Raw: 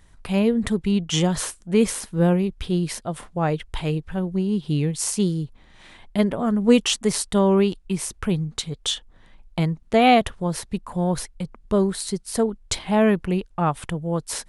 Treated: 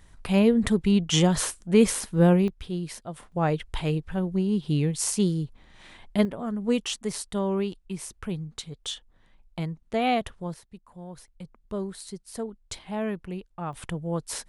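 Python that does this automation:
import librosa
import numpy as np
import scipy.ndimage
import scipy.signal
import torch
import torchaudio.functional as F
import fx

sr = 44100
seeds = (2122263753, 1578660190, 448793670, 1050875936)

y = fx.gain(x, sr, db=fx.steps((0.0, 0.0), (2.48, -8.5), (3.32, -2.0), (6.25, -9.0), (10.54, -19.0), (11.28, -12.0), (13.73, -4.5)))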